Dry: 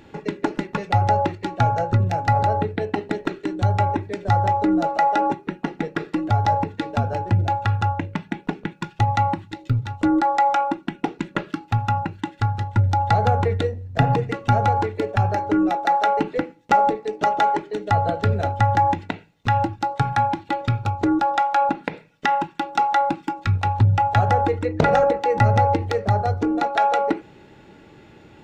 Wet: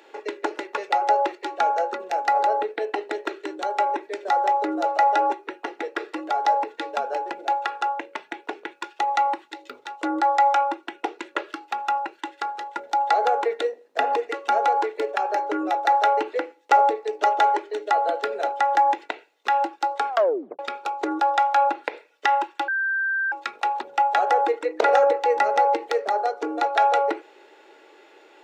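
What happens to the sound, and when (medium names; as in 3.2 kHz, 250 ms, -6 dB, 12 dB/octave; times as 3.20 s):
20.09 s: tape stop 0.50 s
22.68–23.32 s: bleep 1.57 kHz -21 dBFS
whole clip: steep high-pass 370 Hz 36 dB/octave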